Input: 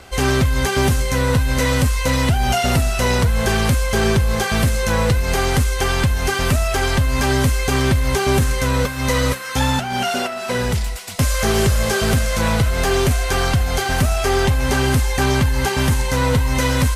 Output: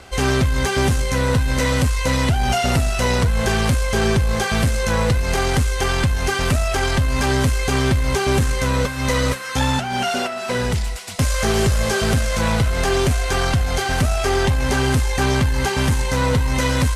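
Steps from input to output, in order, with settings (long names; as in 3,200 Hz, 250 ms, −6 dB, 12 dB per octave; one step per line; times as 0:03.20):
in parallel at −4 dB: asymmetric clip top −20 dBFS
on the sum: low-pass filter 11,000 Hz 12 dB per octave
level −4.5 dB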